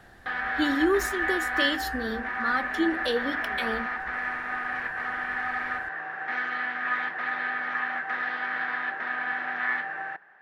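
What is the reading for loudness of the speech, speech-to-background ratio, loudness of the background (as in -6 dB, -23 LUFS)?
-29.0 LUFS, 0.5 dB, -29.5 LUFS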